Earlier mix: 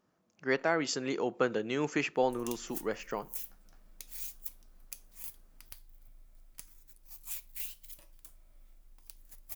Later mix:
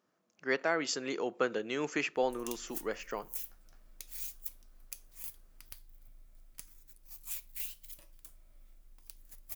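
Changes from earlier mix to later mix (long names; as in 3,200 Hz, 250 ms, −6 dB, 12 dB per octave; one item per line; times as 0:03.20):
speech: add high-pass filter 330 Hz 6 dB per octave
master: add parametric band 860 Hz −3 dB 0.47 octaves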